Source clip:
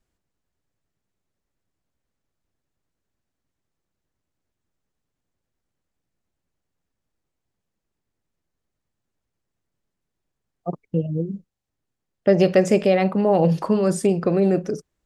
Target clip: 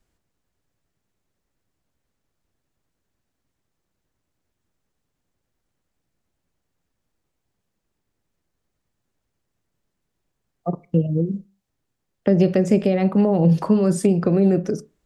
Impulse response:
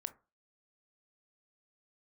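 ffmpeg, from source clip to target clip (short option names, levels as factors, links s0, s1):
-filter_complex "[0:a]acrossover=split=320[s0][s1];[s1]acompressor=threshold=0.0398:ratio=6[s2];[s0][s2]amix=inputs=2:normalize=0,asplit=2[s3][s4];[1:a]atrim=start_sample=2205[s5];[s4][s5]afir=irnorm=-1:irlink=0,volume=1[s6];[s3][s6]amix=inputs=2:normalize=0"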